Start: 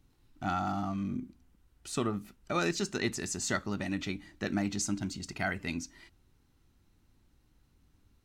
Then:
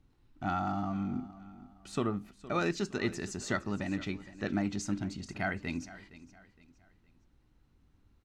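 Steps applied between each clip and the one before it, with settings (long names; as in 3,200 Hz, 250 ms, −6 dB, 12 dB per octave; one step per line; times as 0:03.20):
low-pass filter 2,700 Hz 6 dB per octave
repeating echo 464 ms, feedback 35%, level −17 dB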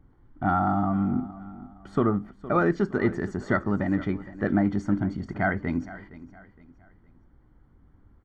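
in parallel at −6.5 dB: hard clipping −25.5 dBFS, distortion −16 dB
on the sum: Savitzky-Golay smoothing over 41 samples
level +6 dB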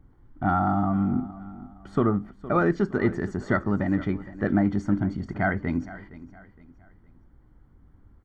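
low-shelf EQ 140 Hz +3 dB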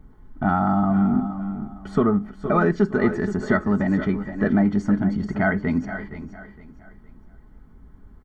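in parallel at +0.5 dB: downward compressor, threshold −31 dBFS, peak gain reduction 13.5 dB
on the sum: comb filter 4.7 ms, depth 49%
single-tap delay 478 ms −12 dB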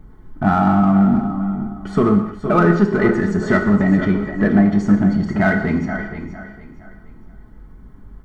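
in parallel at −8 dB: gain into a clipping stage and back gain 21.5 dB
on the sum: reverb whose tail is shaped and stops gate 290 ms falling, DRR 4.5 dB
level +2 dB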